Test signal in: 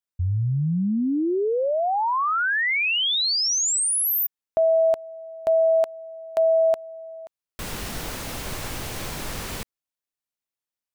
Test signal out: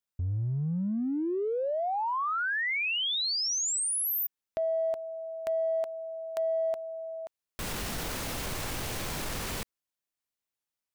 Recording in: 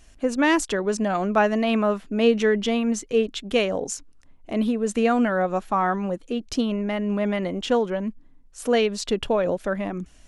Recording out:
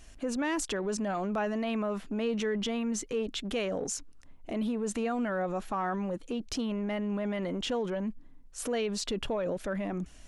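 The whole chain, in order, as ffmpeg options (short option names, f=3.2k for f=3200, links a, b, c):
-af "acompressor=threshold=-31dB:ratio=3:attack=0.65:release=21:knee=1:detection=peak"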